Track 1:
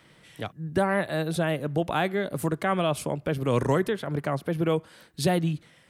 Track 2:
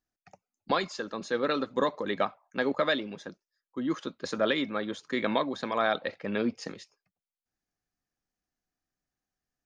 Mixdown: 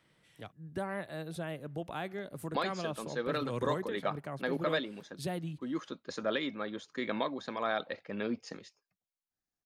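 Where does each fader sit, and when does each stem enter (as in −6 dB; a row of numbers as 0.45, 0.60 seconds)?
−13.0, −6.0 decibels; 0.00, 1.85 seconds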